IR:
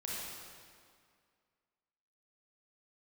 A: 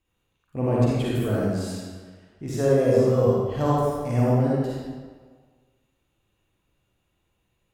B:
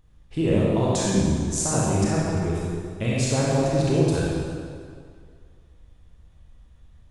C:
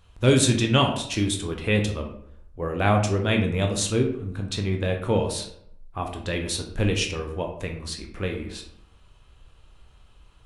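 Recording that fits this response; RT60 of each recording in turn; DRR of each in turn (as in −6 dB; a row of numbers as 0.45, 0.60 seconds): B; 1.6, 2.1, 0.70 seconds; −7.0, −6.0, 2.5 decibels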